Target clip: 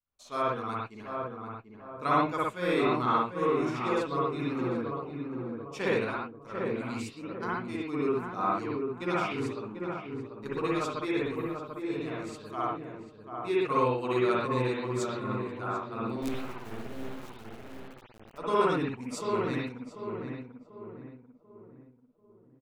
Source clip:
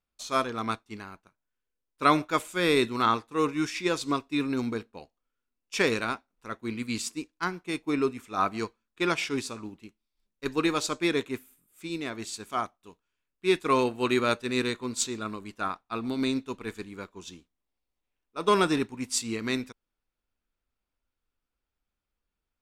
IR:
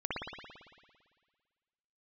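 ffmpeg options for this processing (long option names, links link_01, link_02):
-filter_complex "[0:a]adynamicequalizer=threshold=0.0112:dfrequency=450:dqfactor=2:tfrequency=450:tqfactor=2:attack=5:release=100:ratio=0.375:range=1.5:mode=cutabove:tftype=bell,flanger=delay=0.4:depth=8.1:regen=-48:speed=0.8:shape=triangular,equalizer=frequency=125:width_type=o:width=1:gain=8,equalizer=frequency=500:width_type=o:width=1:gain=6,equalizer=frequency=1000:width_type=o:width=1:gain=5,asplit=2[link_01][link_02];[link_02]adelay=741,lowpass=frequency=1100:poles=1,volume=-4dB,asplit=2[link_03][link_04];[link_04]adelay=741,lowpass=frequency=1100:poles=1,volume=0.44,asplit=2[link_05][link_06];[link_06]adelay=741,lowpass=frequency=1100:poles=1,volume=0.44,asplit=2[link_07][link_08];[link_08]adelay=741,lowpass=frequency=1100:poles=1,volume=0.44,asplit=2[link_09][link_10];[link_10]adelay=741,lowpass=frequency=1100:poles=1,volume=0.44,asplit=2[link_11][link_12];[link_12]adelay=741,lowpass=frequency=1100:poles=1,volume=0.44[link_13];[link_01][link_03][link_05][link_07][link_09][link_11][link_13]amix=inputs=7:normalize=0,asettb=1/sr,asplit=3[link_14][link_15][link_16];[link_14]atrim=end=16.224[link_17];[link_15]atrim=start=16.22:end=18.38,asetpts=PTS-STARTPTS,afade=type=in:duration=0.004:curve=qsin,afade=type=out:start_time=2.156:duration=0.004:curve=qsin,acrusher=bits=4:dc=4:mix=0:aa=0.000001[link_18];[link_16]atrim=start=18.376[link_19];[link_17][link_18]acrossfade=duration=0.004:curve1=hsin:curve2=qsin[link_20];[link_20][link_19]acrossfade=duration=0.004:curve1=qsin:curve2=hsin[link_21];[1:a]atrim=start_sample=2205,atrim=end_sample=6615[link_22];[link_21][link_22]afir=irnorm=-1:irlink=0,volume=-7dB"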